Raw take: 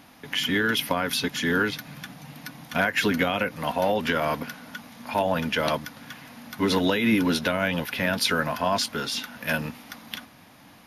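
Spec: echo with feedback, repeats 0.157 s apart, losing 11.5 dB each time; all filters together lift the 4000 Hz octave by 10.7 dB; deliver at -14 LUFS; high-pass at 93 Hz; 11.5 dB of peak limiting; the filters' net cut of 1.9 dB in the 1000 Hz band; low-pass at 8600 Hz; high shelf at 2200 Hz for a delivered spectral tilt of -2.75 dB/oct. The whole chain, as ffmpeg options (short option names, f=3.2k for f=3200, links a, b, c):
-af "highpass=93,lowpass=8.6k,equalizer=f=1k:t=o:g=-5,highshelf=f=2.2k:g=8,equalizer=f=4k:t=o:g=6.5,alimiter=limit=-11dB:level=0:latency=1,aecho=1:1:157|314|471:0.266|0.0718|0.0194,volume=8.5dB"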